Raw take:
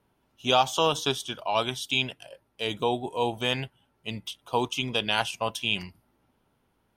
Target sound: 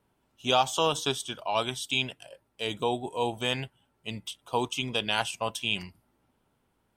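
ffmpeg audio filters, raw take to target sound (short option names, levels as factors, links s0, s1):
-af "equalizer=f=7900:t=o:w=0.22:g=9,volume=0.794"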